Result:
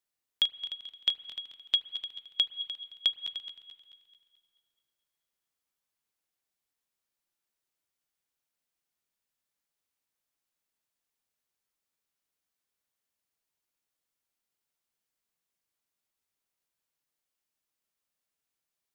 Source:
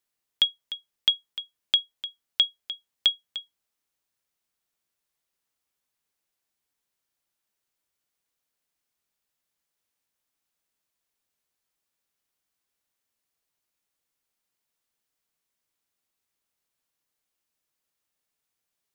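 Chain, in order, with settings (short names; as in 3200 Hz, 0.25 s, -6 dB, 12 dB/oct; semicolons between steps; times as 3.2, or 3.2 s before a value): regenerating reverse delay 0.109 s, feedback 67%, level -11 dB; spring tank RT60 2.3 s, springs 34/39 ms, chirp 55 ms, DRR 16.5 dB; gain -5 dB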